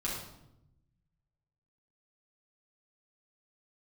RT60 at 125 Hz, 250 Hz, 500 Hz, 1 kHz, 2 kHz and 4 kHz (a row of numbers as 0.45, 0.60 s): 1.7, 1.3, 0.90, 0.75, 0.65, 0.60 s